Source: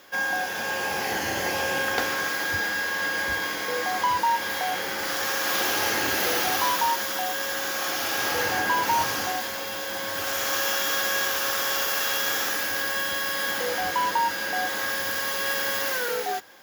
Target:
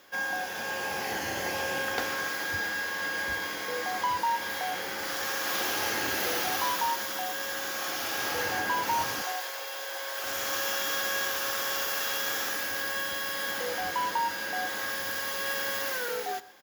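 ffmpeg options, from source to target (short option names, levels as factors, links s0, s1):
-filter_complex "[0:a]asettb=1/sr,asplit=3[s0][s1][s2];[s0]atrim=end=9.224[s3];[s1]atrim=start=9.22:end=10.24,asetpts=PTS-STARTPTS,afade=t=in:d=0.004:c=qsin,afade=t=out:st=1.016:d=0.004:c=qsin,highpass=f=430:w=0.5412,highpass=f=430:w=1.3066[s4];[s2]atrim=start=10.236[s5];[s3][s4]acrossfade=d=0.004:c1=hsin:c2=qsin[s6];[s6][s5]acrossfade=d=0.004:c1=qsin:c2=hsin,aecho=1:1:122:0.1,volume=0.562"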